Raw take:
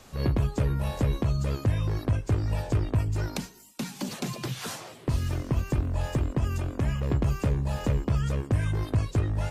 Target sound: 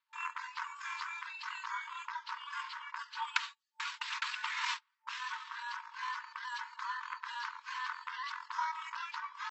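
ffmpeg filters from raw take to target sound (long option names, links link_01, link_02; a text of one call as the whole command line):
ffmpeg -i in.wav -af "asetrate=26990,aresample=44100,atempo=1.63392,aemphasis=mode=reproduction:type=riaa,agate=range=-35dB:threshold=-30dB:ratio=16:detection=peak,afftfilt=real='re*between(b*sr/4096,890,7900)':imag='im*between(b*sr/4096,890,7900)':win_size=4096:overlap=0.75,volume=8dB" out.wav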